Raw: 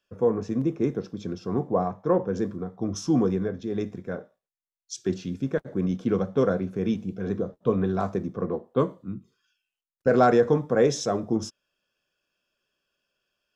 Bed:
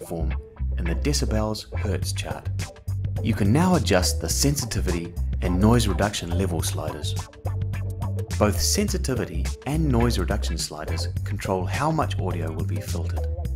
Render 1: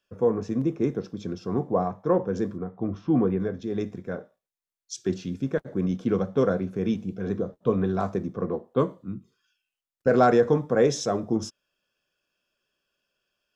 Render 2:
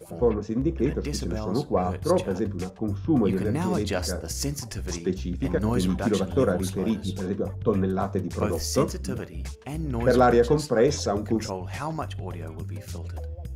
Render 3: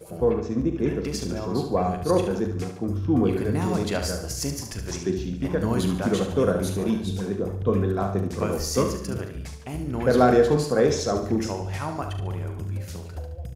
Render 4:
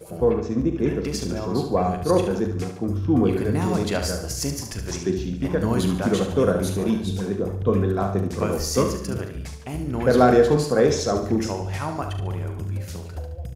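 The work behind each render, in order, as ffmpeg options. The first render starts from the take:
-filter_complex "[0:a]asettb=1/sr,asplit=3[s0][s1][s2];[s0]atrim=end=2.584[s3];[s1]atrim=start=2.58:end=3.4,asetpts=PTS-STARTPTS,afade=t=in:d=0.004:c=qsin,afade=t=out:st=0.816:d=0.004:c=qsin,lowpass=f=2800:w=0.5412,lowpass=f=2800:w=1.3066[s4];[s2]atrim=start=3.396[s5];[s3][s4]acrossfade=d=0.004:c1=hsin:c2=qsin[s6];[s6][s5]acrossfade=d=0.004:c1=qsin:c2=hsin"
-filter_complex "[1:a]volume=0.398[s0];[0:a][s0]amix=inputs=2:normalize=0"
-filter_complex "[0:a]asplit=2[s0][s1];[s1]adelay=40,volume=0.282[s2];[s0][s2]amix=inputs=2:normalize=0,aecho=1:1:72|144|216|288|360:0.398|0.183|0.0842|0.0388|0.0178"
-af "volume=1.26"

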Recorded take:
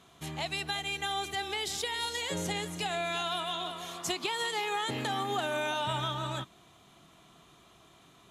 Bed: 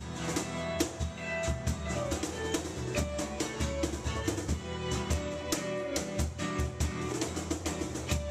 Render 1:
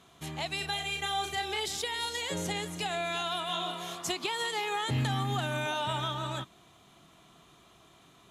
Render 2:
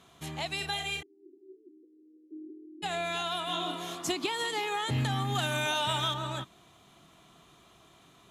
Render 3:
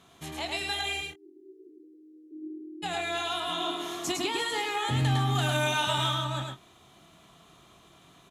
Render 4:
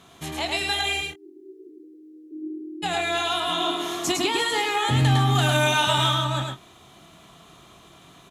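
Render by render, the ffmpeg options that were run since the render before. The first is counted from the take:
-filter_complex "[0:a]asettb=1/sr,asplit=3[s0][s1][s2];[s0]atrim=end=0.574[s3];[s1]atrim=start=0.57:end=1.66,asetpts=PTS-STARTPTS,afade=t=in:d=0.004:c=qsin,afade=t=out:st=1.086:d=0.004:c=qsin,asplit=2[s4][s5];[s5]adelay=37,volume=0.562[s6];[s4][s6]amix=inputs=2:normalize=0,atrim=end_sample=48069[s7];[s2]atrim=start=1.656[s8];[s3][s7]acrossfade=d=0.004:c1=hsin:c2=qsin[s9];[s9][s8]acrossfade=d=0.004:c1=qsin:c2=hsin,asettb=1/sr,asplit=3[s10][s11][s12];[s10]atrim=end=3.464[s13];[s11]atrim=start=3.46:end=3.95,asetpts=PTS-STARTPTS,afade=t=in:d=0.004:c=qsin,afade=t=out:st=0.486:d=0.004:c=qsin,asplit=2[s14][s15];[s15]adelay=29,volume=0.708[s16];[s14][s16]amix=inputs=2:normalize=0,atrim=end_sample=21609[s17];[s12]atrim=start=3.946[s18];[s13][s17]acrossfade=d=0.004:c1=hsin:c2=qsin[s19];[s19][s18]acrossfade=d=0.004:c1=qsin:c2=hsin,asplit=3[s20][s21][s22];[s20]afade=t=out:st=4.9:d=0.02[s23];[s21]asubboost=boost=10.5:cutoff=130,afade=t=in:st=4.9:d=0.02,afade=t=out:st=5.65:d=0.02[s24];[s22]afade=t=in:st=5.65:d=0.02[s25];[s23][s24][s25]amix=inputs=3:normalize=0"
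-filter_complex "[0:a]asplit=3[s0][s1][s2];[s0]afade=t=out:st=1.01:d=0.02[s3];[s1]asuperpass=centerf=310:order=8:qfactor=3.2,afade=t=in:st=1.01:d=0.02,afade=t=out:st=2.82:d=0.02[s4];[s2]afade=t=in:st=2.82:d=0.02[s5];[s3][s4][s5]amix=inputs=3:normalize=0,asettb=1/sr,asplit=3[s6][s7][s8];[s6]atrim=end=3.474[s9];[s7]atrim=start=3.47:end=4.67,asetpts=PTS-STARTPTS,afade=t=in:d=0.004:c=qsin,afade=t=out:st=1.196:d=0.004:c=qsin,equalizer=f=290:w=4.4:g=15[s10];[s8]atrim=start=4.666[s11];[s9][s10]acrossfade=d=0.004:c1=hsin:c2=qsin[s12];[s12][s11]acrossfade=d=0.004:c1=qsin:c2=hsin,asettb=1/sr,asplit=3[s13][s14][s15];[s13]atrim=end=5.354[s16];[s14]atrim=start=5.35:end=6.14,asetpts=PTS-STARTPTS,afade=t=in:d=0.004:c=qsin,afade=t=out:st=0.786:d=0.004:c=qsin,highshelf=f=2200:g=8[s17];[s15]atrim=start=6.136[s18];[s16][s17]acrossfade=d=0.004:c1=hsin:c2=qsin[s19];[s19][s18]acrossfade=d=0.004:c1=qsin:c2=hsin"
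-filter_complex "[0:a]asplit=2[s0][s1];[s1]adelay=23,volume=0.299[s2];[s0][s2]amix=inputs=2:normalize=0,aecho=1:1:106:0.708"
-af "volume=2.11"

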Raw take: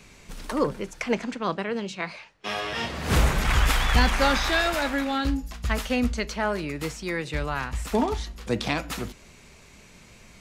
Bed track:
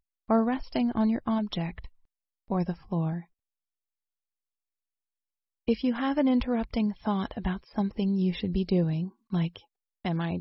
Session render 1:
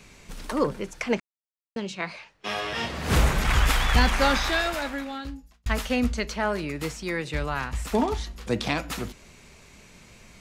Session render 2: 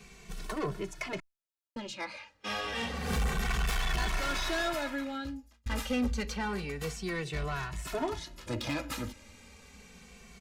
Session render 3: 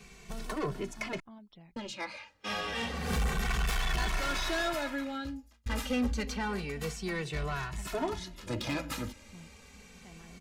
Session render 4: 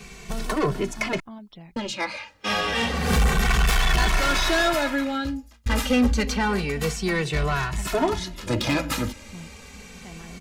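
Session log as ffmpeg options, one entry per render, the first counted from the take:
-filter_complex "[0:a]asplit=4[s0][s1][s2][s3];[s0]atrim=end=1.2,asetpts=PTS-STARTPTS,afade=t=out:st=1.196:d=0.004:c=hsin[s4];[s1]atrim=start=1.2:end=1.76,asetpts=PTS-STARTPTS,volume=0[s5];[s2]atrim=start=1.76:end=5.66,asetpts=PTS-STARTPTS,afade=t=in:d=0.004:c=hsin,afade=t=out:st=2.58:d=1.32[s6];[s3]atrim=start=5.66,asetpts=PTS-STARTPTS,afade=t=in:d=0.004:c=hsin[s7];[s4][s5][s6][s7]concat=n=4:v=0:a=1"
-filter_complex "[0:a]asoftclip=type=tanh:threshold=0.0562,asplit=2[s0][s1];[s1]adelay=2.2,afreqshift=-0.29[s2];[s0][s2]amix=inputs=2:normalize=1"
-filter_complex "[1:a]volume=0.0631[s0];[0:a][s0]amix=inputs=2:normalize=0"
-af "volume=3.35"

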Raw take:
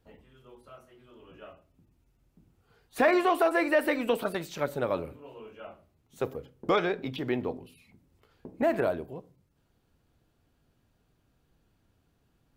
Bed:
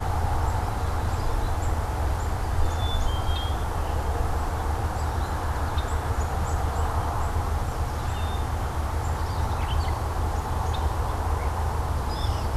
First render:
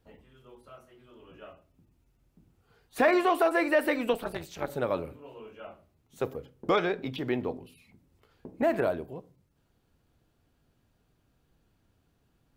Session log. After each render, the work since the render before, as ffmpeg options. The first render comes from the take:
-filter_complex "[0:a]asettb=1/sr,asplit=3[s0][s1][s2];[s0]atrim=end=4.134[s3];[s1]atrim=start=4.13:end=4.7,asetpts=PTS-STARTPTS,afade=t=in:d=0.004:c=qsin,afade=t=out:st=0.566:d=0.004:c=qsin,tremolo=f=240:d=0.889[s4];[s2]atrim=start=4.696[s5];[s3][s4]acrossfade=d=0.004:c1=hsin:c2=qsin[s6];[s6][s5]acrossfade=d=0.004:c1=qsin:c2=hsin"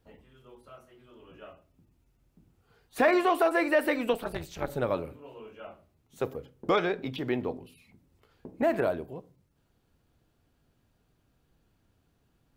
-filter_complex "[0:a]asettb=1/sr,asplit=3[s0][s1][s2];[s0]atrim=end=4.314[s3];[s1]atrim=start=4.31:end=4.95,asetpts=PTS-STARTPTS,afade=t=in:d=0.004:c=qsin,afade=t=out:st=0.636:d=0.004:c=qsin,lowshelf=f=81:g=12[s4];[s2]atrim=start=4.946[s5];[s3][s4]acrossfade=d=0.004:c1=hsin:c2=qsin[s6];[s6][s5]acrossfade=d=0.004:c1=qsin:c2=hsin"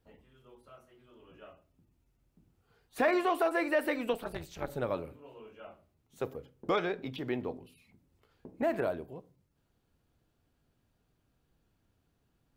-af "volume=0.596"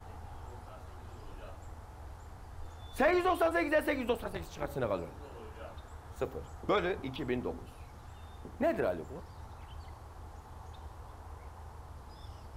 -filter_complex "[1:a]volume=0.0794[s0];[0:a][s0]amix=inputs=2:normalize=0"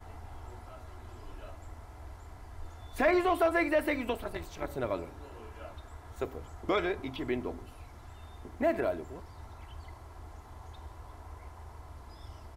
-af "equalizer=f=2100:w=7.8:g=5.5,aecho=1:1:3:0.36"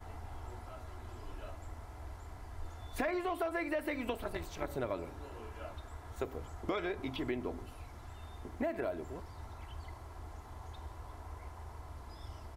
-af "acompressor=threshold=0.0251:ratio=6"

